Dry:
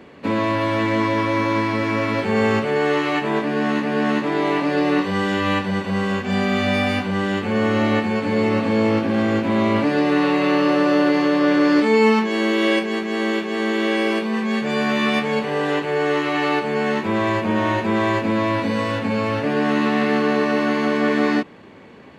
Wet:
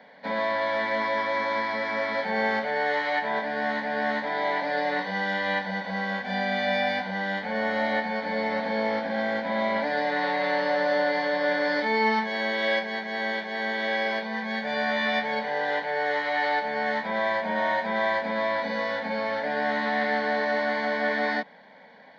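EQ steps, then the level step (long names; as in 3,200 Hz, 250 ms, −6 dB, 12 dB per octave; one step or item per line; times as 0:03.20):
three-way crossover with the lows and the highs turned down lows −15 dB, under 400 Hz, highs −13 dB, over 4,800 Hz
low shelf with overshoot 150 Hz −7 dB, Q 3
phaser with its sweep stopped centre 1,800 Hz, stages 8
0.0 dB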